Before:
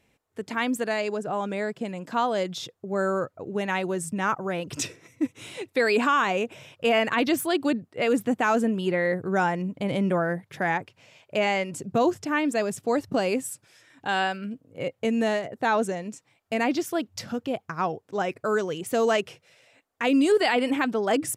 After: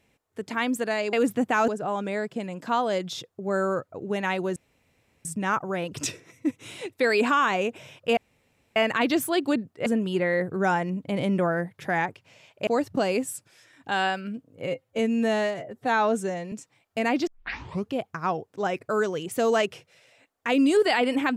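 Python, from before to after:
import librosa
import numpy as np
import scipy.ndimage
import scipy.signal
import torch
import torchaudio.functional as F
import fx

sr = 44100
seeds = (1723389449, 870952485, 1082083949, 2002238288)

y = fx.edit(x, sr, fx.insert_room_tone(at_s=4.01, length_s=0.69),
    fx.insert_room_tone(at_s=6.93, length_s=0.59),
    fx.move(start_s=8.03, length_s=0.55, to_s=1.13),
    fx.cut(start_s=11.39, length_s=1.45),
    fx.stretch_span(start_s=14.83, length_s=1.24, factor=1.5),
    fx.tape_start(start_s=16.82, length_s=0.65), tone=tone)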